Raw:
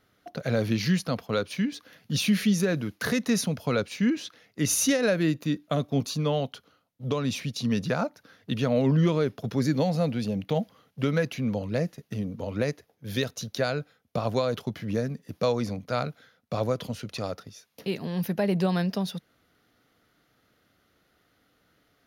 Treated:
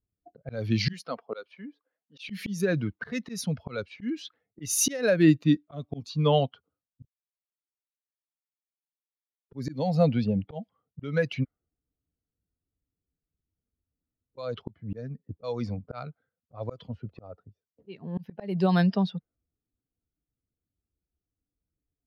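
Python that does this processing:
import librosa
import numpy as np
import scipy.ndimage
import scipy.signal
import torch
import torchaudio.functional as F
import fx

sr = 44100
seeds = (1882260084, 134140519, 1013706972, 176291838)

y = fx.highpass(x, sr, hz=fx.line((0.92, 250.0), (2.29, 780.0)), slope=12, at=(0.92, 2.29), fade=0.02)
y = fx.edit(y, sr, fx.silence(start_s=7.05, length_s=2.46),
    fx.room_tone_fill(start_s=11.44, length_s=2.93, crossfade_s=0.02), tone=tone)
y = fx.bin_expand(y, sr, power=1.5)
y = fx.env_lowpass(y, sr, base_hz=310.0, full_db=-24.0)
y = fx.auto_swell(y, sr, attack_ms=404.0)
y = y * 10.0 ** (8.5 / 20.0)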